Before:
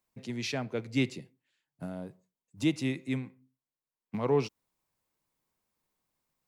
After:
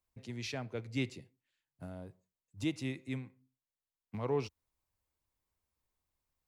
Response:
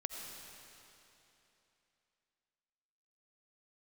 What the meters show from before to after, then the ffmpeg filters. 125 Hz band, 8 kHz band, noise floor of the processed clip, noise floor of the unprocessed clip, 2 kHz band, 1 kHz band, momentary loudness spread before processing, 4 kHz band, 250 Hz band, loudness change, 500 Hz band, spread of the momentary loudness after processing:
-5.0 dB, -6.0 dB, under -85 dBFS, under -85 dBFS, -6.0 dB, -6.0 dB, 15 LU, -6.0 dB, -7.5 dB, -6.5 dB, -6.5 dB, 15 LU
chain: -af "lowshelf=f=110:t=q:w=1.5:g=11,volume=-6dB"

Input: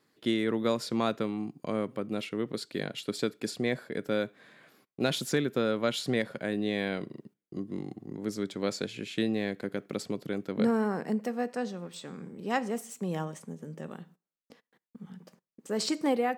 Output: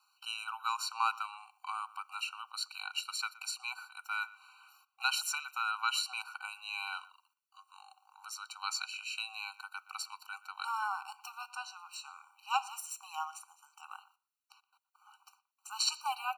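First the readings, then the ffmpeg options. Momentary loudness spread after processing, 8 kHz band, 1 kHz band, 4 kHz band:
14 LU, +2.5 dB, +1.5 dB, +1.0 dB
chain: -filter_complex "[0:a]highpass=f=840:w=0.5412,highpass=f=840:w=1.3066,asplit=2[a][b];[b]adelay=120,highpass=300,lowpass=3.4k,asoftclip=type=hard:threshold=-28dB,volume=-19dB[c];[a][c]amix=inputs=2:normalize=0,afftfilt=real='re*eq(mod(floor(b*sr/1024/770),2),1)':imag='im*eq(mod(floor(b*sr/1024/770),2),1)':win_size=1024:overlap=0.75,volume=5dB"

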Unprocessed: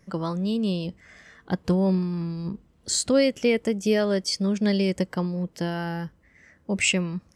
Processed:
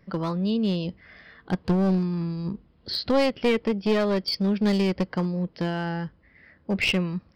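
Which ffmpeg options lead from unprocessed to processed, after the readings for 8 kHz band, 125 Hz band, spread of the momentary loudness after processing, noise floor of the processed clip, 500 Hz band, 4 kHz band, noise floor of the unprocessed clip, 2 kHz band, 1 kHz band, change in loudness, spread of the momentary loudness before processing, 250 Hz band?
under -15 dB, +0.5 dB, 10 LU, -60 dBFS, -1.0 dB, 0.0 dB, -61 dBFS, -0.5 dB, +3.0 dB, -0.5 dB, 11 LU, 0.0 dB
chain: -af "aresample=11025,aresample=44100,aeval=exprs='clip(val(0),-1,0.075)':c=same,volume=1dB"

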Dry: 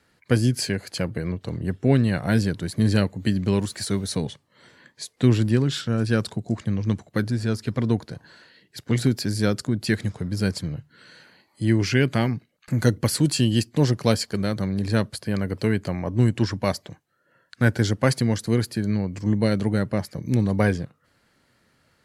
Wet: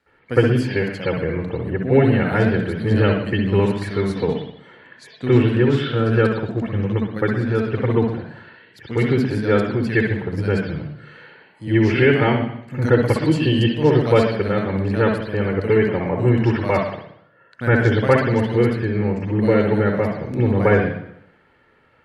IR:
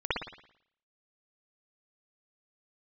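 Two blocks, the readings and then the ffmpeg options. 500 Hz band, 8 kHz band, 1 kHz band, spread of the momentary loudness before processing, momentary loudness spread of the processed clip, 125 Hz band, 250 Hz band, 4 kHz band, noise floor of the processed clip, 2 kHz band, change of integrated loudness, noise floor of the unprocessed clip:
+9.0 dB, under -10 dB, +8.5 dB, 8 LU, 9 LU, +3.0 dB, +3.5 dB, -1.0 dB, -56 dBFS, +7.0 dB, +4.5 dB, -66 dBFS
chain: -filter_complex "[0:a]bass=f=250:g=-5,treble=f=4k:g=-9[a];[1:a]atrim=start_sample=2205,asetrate=41013,aresample=44100[b];[a][b]afir=irnorm=-1:irlink=0,volume=-2.5dB"

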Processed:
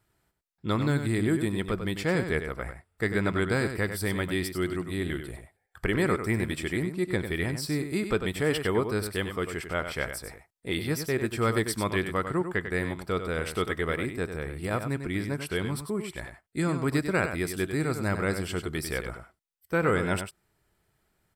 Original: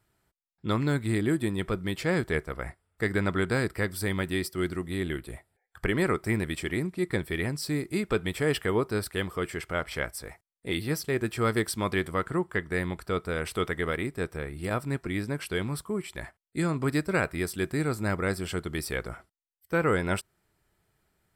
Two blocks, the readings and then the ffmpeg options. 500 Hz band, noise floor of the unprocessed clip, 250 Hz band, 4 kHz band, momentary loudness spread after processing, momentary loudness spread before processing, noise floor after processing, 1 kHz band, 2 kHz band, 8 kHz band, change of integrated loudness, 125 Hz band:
+0.5 dB, -79 dBFS, +0.5 dB, +0.5 dB, 8 LU, 7 LU, -76 dBFS, +0.5 dB, +0.5 dB, +0.5 dB, +0.5 dB, +0.5 dB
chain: -af "aecho=1:1:97:0.376"

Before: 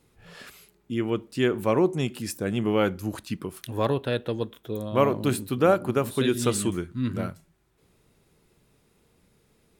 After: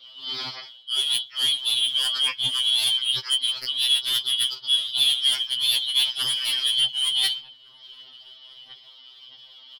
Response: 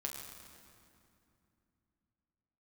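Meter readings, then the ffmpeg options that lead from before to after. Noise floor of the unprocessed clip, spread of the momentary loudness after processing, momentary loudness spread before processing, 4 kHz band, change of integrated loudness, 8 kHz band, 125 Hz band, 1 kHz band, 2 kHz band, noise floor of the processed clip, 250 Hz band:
-66 dBFS, 7 LU, 11 LU, +22.0 dB, +5.5 dB, +7.5 dB, under -20 dB, -12.0 dB, +1.5 dB, -50 dBFS, under -25 dB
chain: -filter_complex "[0:a]afftfilt=real='real(if(lt(b,272),68*(eq(floor(b/68),0)*1+eq(floor(b/68),1)*3+eq(floor(b/68),2)*0+eq(floor(b/68),3)*2)+mod(b,68),b),0)':imag='imag(if(lt(b,272),68*(eq(floor(b/68),0)*1+eq(floor(b/68),1)*3+eq(floor(b/68),2)*0+eq(floor(b/68),3)*2)+mod(b,68),b),0)':win_size=2048:overlap=0.75,areverse,acompressor=threshold=-32dB:ratio=12,areverse,tremolo=f=79:d=1,aemphasis=mode=production:type=riaa,aresample=11025,aresample=44100,equalizer=f=94:t=o:w=1:g=10.5,aeval=exprs='0.126*sin(PI/2*2.82*val(0)/0.126)':c=same,asplit=2[a][b];[b]adelay=1458,volume=-19dB,highshelf=f=4k:g=-32.8[c];[a][c]amix=inputs=2:normalize=0,aphaser=in_gain=1:out_gain=1:delay=3.4:decay=0.5:speed=1.6:type=sinusoidal,afftfilt=real='re*2.45*eq(mod(b,6),0)':imag='im*2.45*eq(mod(b,6),0)':win_size=2048:overlap=0.75,volume=4dB"

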